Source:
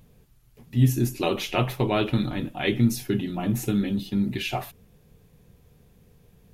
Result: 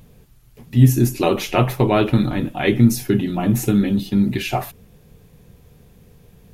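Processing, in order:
dynamic equaliser 3,300 Hz, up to −6 dB, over −45 dBFS, Q 1.4
level +7.5 dB

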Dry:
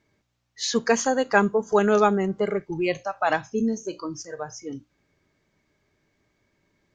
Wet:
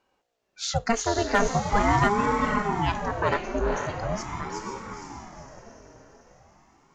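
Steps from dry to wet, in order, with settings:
feedback delay with all-pass diffusion 486 ms, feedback 50%, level −4.5 dB
hard clipping −9.5 dBFS, distortion −23 dB
ring modulator whose carrier an LFO sweeps 420 Hz, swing 60%, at 0.42 Hz

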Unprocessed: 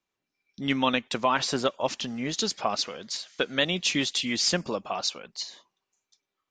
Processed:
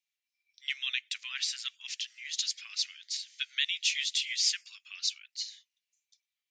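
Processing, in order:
Butterworth high-pass 2,000 Hz 36 dB per octave
level −2 dB

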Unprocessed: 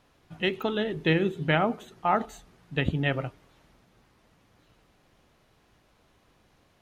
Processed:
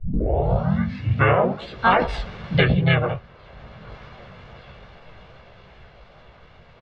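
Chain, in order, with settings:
turntable start at the beginning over 2.16 s
source passing by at 0:02.20, 31 m/s, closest 5.4 metres
low-pass filter 3,400 Hz 24 dB per octave
comb filter 1.8 ms, depth 98%
chorus effect 2.4 Hz, delay 16 ms, depth 6.1 ms
pitch-shifted copies added −5 semitones −10 dB, +4 semitones −1 dB
boost into a limiter +20 dB
multiband upward and downward compressor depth 70%
level −2 dB

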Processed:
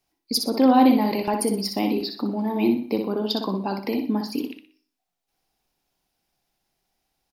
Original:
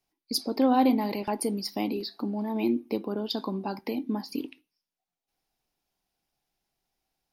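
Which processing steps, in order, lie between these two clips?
repeating echo 61 ms, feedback 32%, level −6 dB
on a send at −22.5 dB: convolution reverb RT60 0.40 s, pre-delay 90 ms
on the sum: level +5 dB

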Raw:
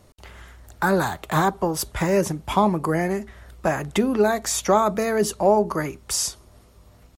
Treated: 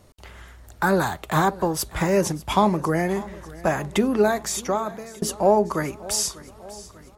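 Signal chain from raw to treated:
0:02.23–0:02.77: dynamic equaliser 5,000 Hz, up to +5 dB, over −41 dBFS, Q 0.78
0:04.25–0:05.22: fade out
feedback echo with a swinging delay time 595 ms, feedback 57%, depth 52 cents, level −19 dB

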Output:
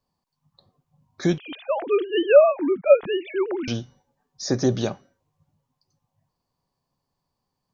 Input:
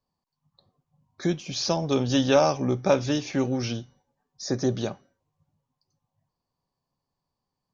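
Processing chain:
0:01.38–0:03.68: three sine waves on the formant tracks
level +4 dB

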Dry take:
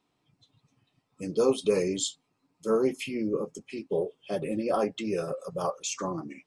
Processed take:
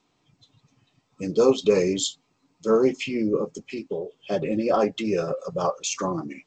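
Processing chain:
0:03.67–0:04.20: downward compressor 8 to 1, threshold −32 dBFS, peak gain reduction 9 dB
level +5.5 dB
G.722 64 kbit/s 16,000 Hz

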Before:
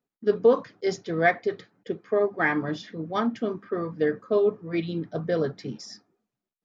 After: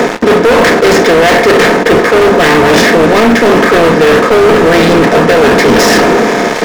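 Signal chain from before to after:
compressor on every frequency bin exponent 0.4
high-pass filter 150 Hz 24 dB per octave
reversed playback
downward compressor 12 to 1, threshold −27 dBFS, peak gain reduction 17 dB
reversed playback
leveller curve on the samples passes 2
dead-zone distortion −49 dBFS
hollow resonant body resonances 930/2,600 Hz, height 8 dB
hard clipping −28.5 dBFS, distortion −9 dB
on a send at −13.5 dB: convolution reverb, pre-delay 5 ms
on the sum: boost into a limiter +32.5 dB
level −1 dB

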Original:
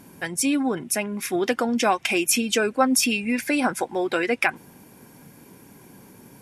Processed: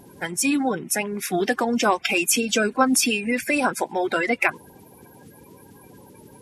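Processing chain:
spectral magnitudes quantised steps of 30 dB
level +1.5 dB

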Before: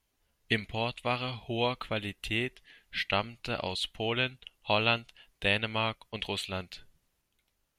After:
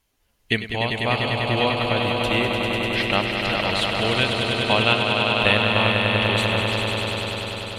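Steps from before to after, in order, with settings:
echo that builds up and dies away 99 ms, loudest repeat 5, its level −6 dB
level +6.5 dB

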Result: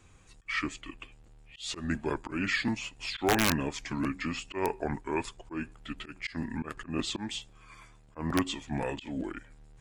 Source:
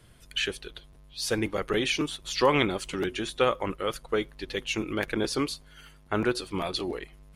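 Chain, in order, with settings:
volume swells 126 ms
speed change −25%
wrap-around overflow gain 14.5 dB
level −2 dB

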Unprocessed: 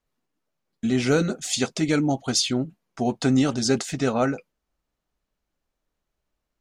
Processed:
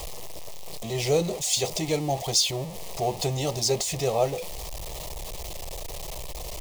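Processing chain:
converter with a step at zero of −27 dBFS
phaser with its sweep stopped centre 610 Hz, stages 4

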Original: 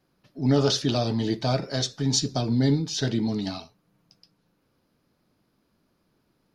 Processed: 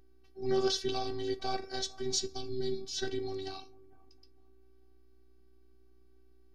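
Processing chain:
mains hum 60 Hz, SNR 24 dB
0:02.36–0:02.93: flat-topped bell 860 Hz −9 dB 2.9 octaves
phases set to zero 384 Hz
on a send: bucket-brigade delay 450 ms, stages 4,096, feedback 30%, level −21 dB
on the sum: level −5.5 dB

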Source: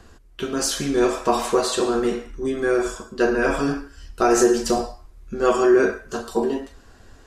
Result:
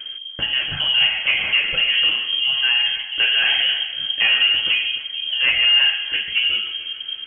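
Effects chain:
low-shelf EQ 82 Hz +10 dB
in parallel at 0 dB: downward compressor, threshold −26 dBFS, peak gain reduction 14 dB
on the sum: soft clipping −10 dBFS, distortion −17 dB
delay that swaps between a low-pass and a high-pass 147 ms, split 950 Hz, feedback 63%, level −9.5 dB
voice inversion scrambler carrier 3,200 Hz

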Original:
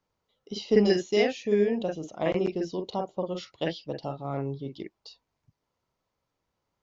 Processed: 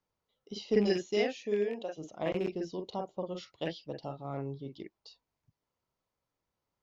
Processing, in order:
loose part that buzzes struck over −30 dBFS, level −30 dBFS
0:01.24–0:01.97: high-pass filter 140 Hz → 500 Hz 12 dB per octave
level −6 dB

